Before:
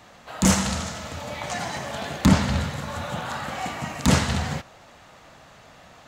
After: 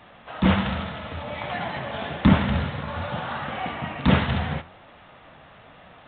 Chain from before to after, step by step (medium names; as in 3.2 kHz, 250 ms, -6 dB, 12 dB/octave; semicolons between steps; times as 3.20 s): flange 1.2 Hz, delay 4.3 ms, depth 9.4 ms, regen +80%; trim +5 dB; µ-law 64 kbps 8 kHz